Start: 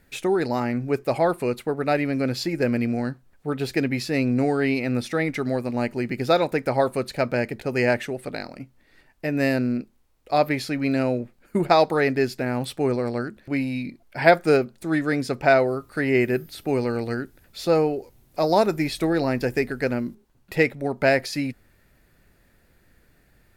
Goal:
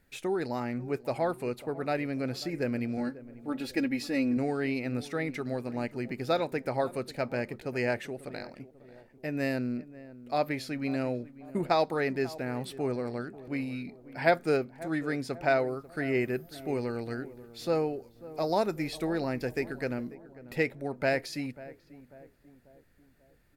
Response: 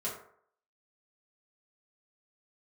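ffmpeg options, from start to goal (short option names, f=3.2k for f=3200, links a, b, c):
-filter_complex "[0:a]asettb=1/sr,asplit=3[a][b][c];[a]atrim=end=2.974[d];[b]atrim=start=2.97:end=4.37,asetpts=PTS-STARTPTS,afade=t=in:d=0.004:c=qsin,afade=t=out:st=1.396:d=0.004:c=qsin,aecho=1:1:3.6:0.73,atrim=end_sample=61740[e];[c]atrim=start=4.366[f];[d][e]acrossfade=d=0.004:c1=hsin:c2=qsin[g];[g][f]acrossfade=d=0.004:c1=qsin:c2=hsin,asplit=2[h][i];[i]adelay=542,lowpass=f=1.1k:p=1,volume=-16.5dB,asplit=2[j][k];[k]adelay=542,lowpass=f=1.1k:p=1,volume=0.52,asplit=2[l][m];[m]adelay=542,lowpass=f=1.1k:p=1,volume=0.52,asplit=2[n][o];[o]adelay=542,lowpass=f=1.1k:p=1,volume=0.52,asplit=2[p][q];[q]adelay=542,lowpass=f=1.1k:p=1,volume=0.52[r];[j][l][n][p][r]amix=inputs=5:normalize=0[s];[h][s]amix=inputs=2:normalize=0,volume=-8.5dB"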